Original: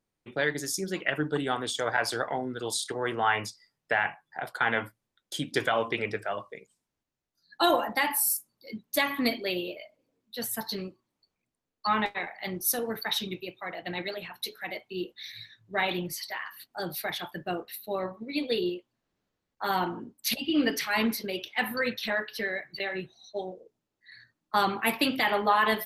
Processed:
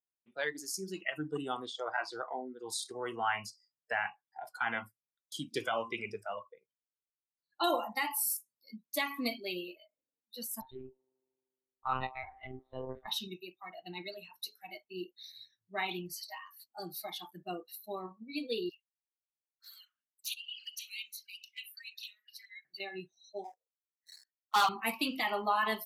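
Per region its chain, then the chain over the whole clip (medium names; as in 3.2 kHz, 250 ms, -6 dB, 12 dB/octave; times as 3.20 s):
1.66–2.69 s: low-pass 3.8 kHz + peaking EQ 120 Hz -5.5 dB 1.6 oct
6.35–7.64 s: inverse Chebyshev low-pass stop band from 9.4 kHz, stop band 50 dB + comb 2 ms, depth 39%
10.61–13.08 s: monotone LPC vocoder at 8 kHz 130 Hz + feedback echo behind a band-pass 77 ms, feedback 80%, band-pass 560 Hz, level -20 dB + tape noise reduction on one side only decoder only
18.69–22.65 s: inverse Chebyshev high-pass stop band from 910 Hz + touch-sensitive flanger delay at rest 8.5 ms, full sweep at -32 dBFS
23.44–24.69 s: high-pass 750 Hz 24 dB/octave + waveshaping leveller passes 3
whole clip: spectral noise reduction 18 dB; bass shelf 120 Hz -7.5 dB; trim -6.5 dB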